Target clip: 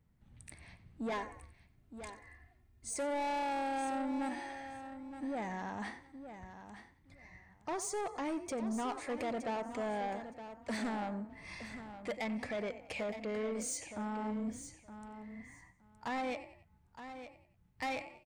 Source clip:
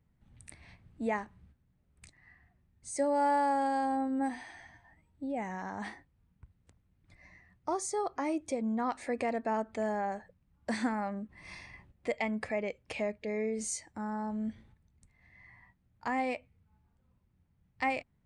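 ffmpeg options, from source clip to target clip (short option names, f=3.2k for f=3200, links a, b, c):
-filter_complex "[0:a]asettb=1/sr,asplit=3[a][b][c];[a]atrim=end=1.124[d];[b]atrim=start=1.12:end=2.94,asetpts=PTS-STARTPTS,afade=t=in:d=0.004:c=qsin,afade=t=out:st=1.816:d=0.004:c=qsin,aecho=1:1:2.9:0.97,atrim=end_sample=80262[e];[c]atrim=start=2.936[f];[d][e]acrossfade=d=0.004:c1=hsin:c2=qsin[g];[g][f]acrossfade=d=0.004:c1=qsin:c2=hsin,asplit=2[h][i];[i]asplit=3[j][k][l];[j]adelay=92,afreqshift=32,volume=-16dB[m];[k]adelay=184,afreqshift=64,volume=-24.2dB[n];[l]adelay=276,afreqshift=96,volume=-32.4dB[o];[m][n][o]amix=inputs=3:normalize=0[p];[h][p]amix=inputs=2:normalize=0,asoftclip=type=tanh:threshold=-33dB,asplit=2[q][r];[r]aecho=0:1:917|1834:0.282|0.0451[s];[q][s]amix=inputs=2:normalize=0"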